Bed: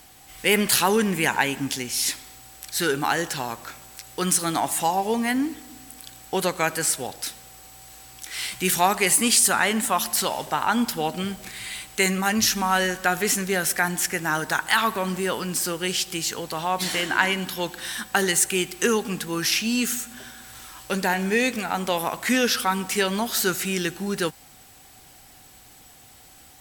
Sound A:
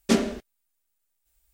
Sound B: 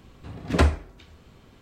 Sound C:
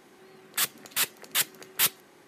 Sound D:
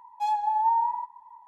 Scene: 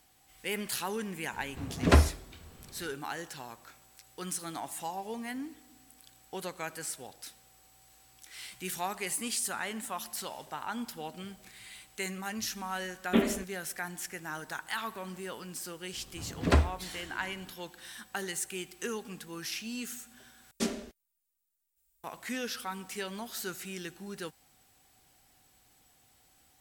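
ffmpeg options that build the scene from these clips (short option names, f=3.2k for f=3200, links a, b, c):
-filter_complex "[2:a]asplit=2[a][b];[1:a]asplit=2[c][d];[0:a]volume=-15dB[e];[c]aresample=8000,aresample=44100[f];[d]highshelf=f=4.8k:g=9.5[g];[e]asplit=2[h][i];[h]atrim=end=20.514[j];[g]atrim=end=1.53,asetpts=PTS-STARTPTS,volume=-11.5dB[k];[i]atrim=start=22.036[l];[a]atrim=end=1.61,asetpts=PTS-STARTPTS,volume=-1.5dB,afade=t=in:d=0.004:c=hsin,afade=t=out:st=1.606:d=0.004:c=hsin,adelay=1330[m];[f]atrim=end=1.53,asetpts=PTS-STARTPTS,volume=-4dB,afade=t=in:d=0.004:c=hsin,afade=t=out:st=1.526:d=0.004:c=hsin,adelay=13040[n];[b]atrim=end=1.61,asetpts=PTS-STARTPTS,volume=-4.5dB,afade=t=in:d=0.004:c=hsin,afade=t=out:st=1.606:d=0.004:c=hsin,adelay=15930[o];[j][k]acrossfade=d=0.004:c1=hsin:c2=hsin[p];[p][l]acrossfade=d=0.004:c1=hsin:c2=hsin[q];[q][m][n][o]amix=inputs=4:normalize=0"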